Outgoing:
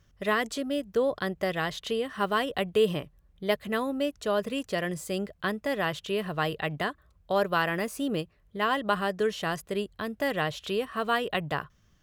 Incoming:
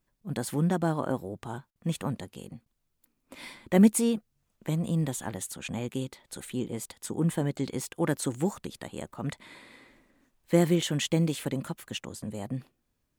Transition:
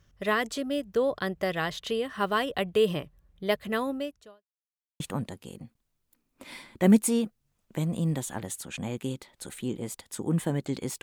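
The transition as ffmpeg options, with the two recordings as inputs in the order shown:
ffmpeg -i cue0.wav -i cue1.wav -filter_complex "[0:a]apad=whole_dur=11.02,atrim=end=11.02,asplit=2[link_01][link_02];[link_01]atrim=end=4.44,asetpts=PTS-STARTPTS,afade=type=out:start_time=3.9:duration=0.54:curve=qua[link_03];[link_02]atrim=start=4.44:end=5,asetpts=PTS-STARTPTS,volume=0[link_04];[1:a]atrim=start=1.91:end=7.93,asetpts=PTS-STARTPTS,afade=type=in:duration=0.004:curve=hsin[link_05];[link_03][link_04][link_05]concat=n=3:v=0:a=1" out.wav

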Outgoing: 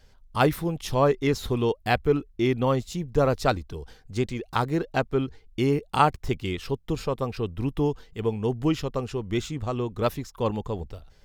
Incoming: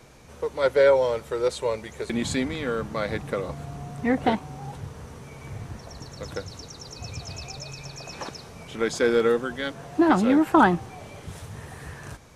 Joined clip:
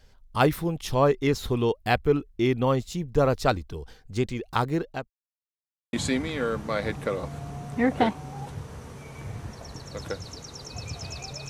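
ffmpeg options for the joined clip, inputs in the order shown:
ffmpeg -i cue0.wav -i cue1.wav -filter_complex "[0:a]apad=whole_dur=11.49,atrim=end=11.49,asplit=2[link_01][link_02];[link_01]atrim=end=5.1,asetpts=PTS-STARTPTS,afade=type=out:start_time=4.62:duration=0.48:curve=qsin[link_03];[link_02]atrim=start=5.1:end=5.93,asetpts=PTS-STARTPTS,volume=0[link_04];[1:a]atrim=start=2.19:end=7.75,asetpts=PTS-STARTPTS,afade=type=in:duration=0.004:curve=hsin[link_05];[link_03][link_04][link_05]concat=n=3:v=0:a=1" out.wav

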